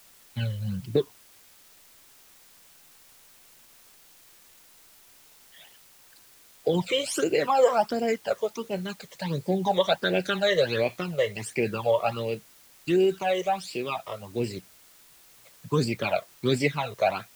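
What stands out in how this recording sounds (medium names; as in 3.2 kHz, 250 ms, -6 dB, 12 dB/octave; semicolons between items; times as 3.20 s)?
phasing stages 12, 1.4 Hz, lowest notch 250–1200 Hz; a quantiser's noise floor 10-bit, dither triangular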